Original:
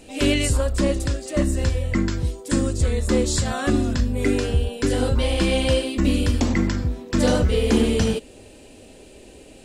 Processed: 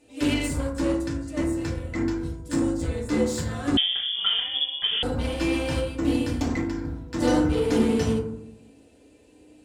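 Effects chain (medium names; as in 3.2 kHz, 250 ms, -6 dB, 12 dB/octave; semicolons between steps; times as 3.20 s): high-pass 92 Hz 6 dB/octave; Chebyshev shaper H 7 -22 dB, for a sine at -7.5 dBFS; FDN reverb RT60 0.71 s, low-frequency decay 1.5×, high-frequency decay 0.35×, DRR -3.5 dB; 3.77–5.03 s: frequency inversion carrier 3.4 kHz; 6.59–7.22 s: compression, threshold -15 dBFS, peak gain reduction 4 dB; trim -9 dB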